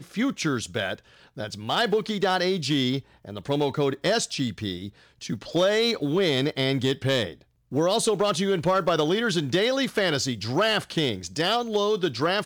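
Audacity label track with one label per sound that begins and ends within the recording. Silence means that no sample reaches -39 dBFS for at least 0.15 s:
1.370000	3.000000	sound
3.250000	4.890000	sound
5.210000	7.340000	sound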